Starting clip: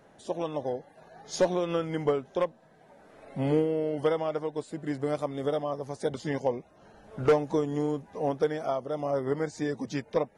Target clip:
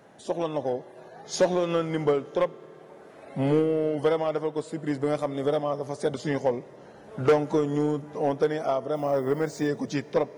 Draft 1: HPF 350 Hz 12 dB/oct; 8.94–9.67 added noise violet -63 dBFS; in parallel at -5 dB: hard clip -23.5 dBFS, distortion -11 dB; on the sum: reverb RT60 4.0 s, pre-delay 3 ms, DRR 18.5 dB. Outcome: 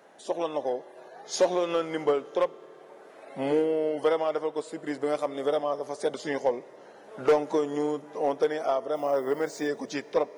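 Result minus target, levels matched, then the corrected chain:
125 Hz band -12.5 dB
HPF 93 Hz 12 dB/oct; 8.94–9.67 added noise violet -63 dBFS; in parallel at -5 dB: hard clip -23.5 dBFS, distortion -11 dB; on the sum: reverb RT60 4.0 s, pre-delay 3 ms, DRR 18.5 dB

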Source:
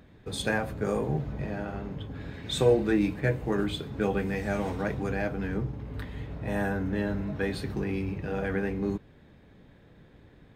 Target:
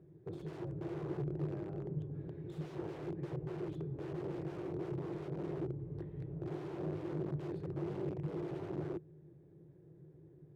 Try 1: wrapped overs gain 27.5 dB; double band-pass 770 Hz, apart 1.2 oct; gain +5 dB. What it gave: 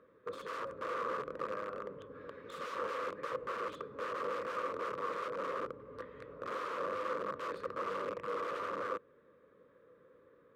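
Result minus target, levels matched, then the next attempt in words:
1000 Hz band +13.0 dB
wrapped overs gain 27.5 dB; double band-pass 230 Hz, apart 1.2 oct; gain +5 dB

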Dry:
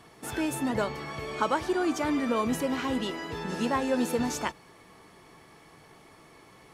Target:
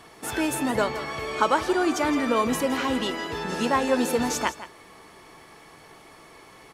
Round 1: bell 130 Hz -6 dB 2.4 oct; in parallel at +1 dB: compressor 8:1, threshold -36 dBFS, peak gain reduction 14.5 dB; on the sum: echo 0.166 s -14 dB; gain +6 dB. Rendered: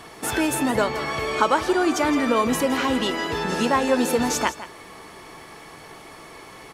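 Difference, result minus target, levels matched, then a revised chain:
compressor: peak gain reduction +14.5 dB
bell 130 Hz -6 dB 2.4 oct; echo 0.166 s -14 dB; gain +6 dB

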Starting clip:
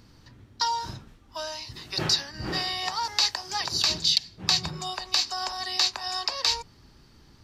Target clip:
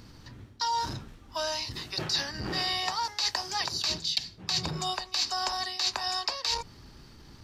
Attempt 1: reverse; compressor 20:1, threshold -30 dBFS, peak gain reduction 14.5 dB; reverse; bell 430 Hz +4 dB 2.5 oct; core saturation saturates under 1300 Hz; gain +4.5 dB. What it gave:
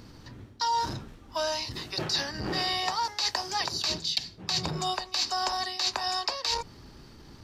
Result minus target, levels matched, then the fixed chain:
500 Hz band +3.0 dB
reverse; compressor 20:1, threshold -30 dBFS, peak gain reduction 14.5 dB; reverse; core saturation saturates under 1300 Hz; gain +4.5 dB

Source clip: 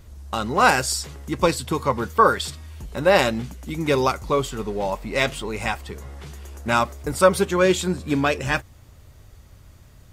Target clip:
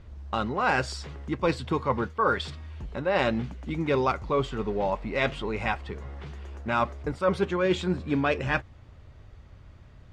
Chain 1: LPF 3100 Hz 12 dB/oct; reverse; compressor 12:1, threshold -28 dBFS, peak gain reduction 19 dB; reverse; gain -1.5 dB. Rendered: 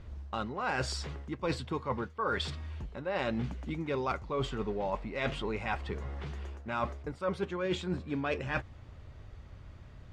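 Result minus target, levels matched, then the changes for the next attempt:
compressor: peak gain reduction +8.5 dB
change: compressor 12:1, threshold -18.5 dBFS, peak gain reduction 10.5 dB

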